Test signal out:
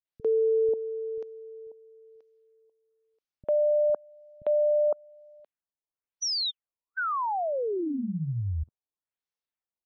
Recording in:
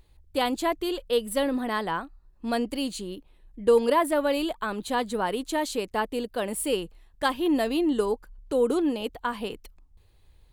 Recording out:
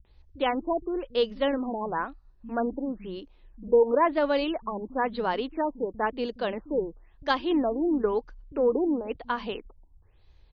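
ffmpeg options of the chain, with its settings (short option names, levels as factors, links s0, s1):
-filter_complex "[0:a]acrossover=split=190[s0][s1];[s1]adelay=50[s2];[s0][s2]amix=inputs=2:normalize=0,afftfilt=real='re*lt(b*sr/1024,980*pow(6800/980,0.5+0.5*sin(2*PI*0.99*pts/sr)))':imag='im*lt(b*sr/1024,980*pow(6800/980,0.5+0.5*sin(2*PI*0.99*pts/sr)))':win_size=1024:overlap=0.75"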